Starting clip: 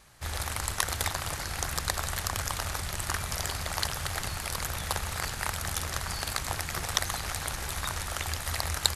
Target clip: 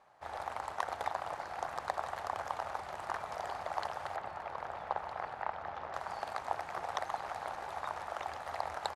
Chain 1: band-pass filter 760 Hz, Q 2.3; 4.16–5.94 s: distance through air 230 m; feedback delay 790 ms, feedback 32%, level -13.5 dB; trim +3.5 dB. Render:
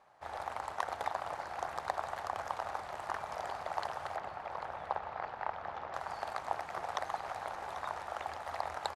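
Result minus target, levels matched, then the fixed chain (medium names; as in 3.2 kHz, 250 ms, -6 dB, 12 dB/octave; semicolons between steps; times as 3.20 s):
echo 470 ms early
band-pass filter 760 Hz, Q 2.3; 4.16–5.94 s: distance through air 230 m; feedback delay 1260 ms, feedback 32%, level -13.5 dB; trim +3.5 dB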